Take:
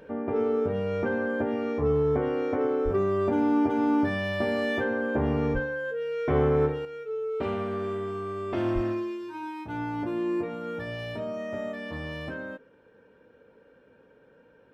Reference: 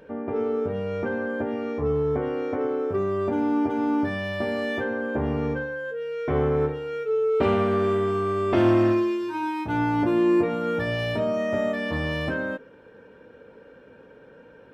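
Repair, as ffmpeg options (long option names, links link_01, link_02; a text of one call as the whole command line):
ffmpeg -i in.wav -filter_complex "[0:a]asplit=3[link_01][link_02][link_03];[link_01]afade=type=out:start_time=2.84:duration=0.02[link_04];[link_02]highpass=frequency=140:width=0.5412,highpass=frequency=140:width=1.3066,afade=type=in:start_time=2.84:duration=0.02,afade=type=out:start_time=2.96:duration=0.02[link_05];[link_03]afade=type=in:start_time=2.96:duration=0.02[link_06];[link_04][link_05][link_06]amix=inputs=3:normalize=0,asplit=3[link_07][link_08][link_09];[link_07]afade=type=out:start_time=5.53:duration=0.02[link_10];[link_08]highpass=frequency=140:width=0.5412,highpass=frequency=140:width=1.3066,afade=type=in:start_time=5.53:duration=0.02,afade=type=out:start_time=5.65:duration=0.02[link_11];[link_09]afade=type=in:start_time=5.65:duration=0.02[link_12];[link_10][link_11][link_12]amix=inputs=3:normalize=0,asplit=3[link_13][link_14][link_15];[link_13]afade=type=out:start_time=8.74:duration=0.02[link_16];[link_14]highpass=frequency=140:width=0.5412,highpass=frequency=140:width=1.3066,afade=type=in:start_time=8.74:duration=0.02,afade=type=out:start_time=8.86:duration=0.02[link_17];[link_15]afade=type=in:start_time=8.86:duration=0.02[link_18];[link_16][link_17][link_18]amix=inputs=3:normalize=0,asetnsamples=nb_out_samples=441:pad=0,asendcmd='6.85 volume volume 8.5dB',volume=0dB" out.wav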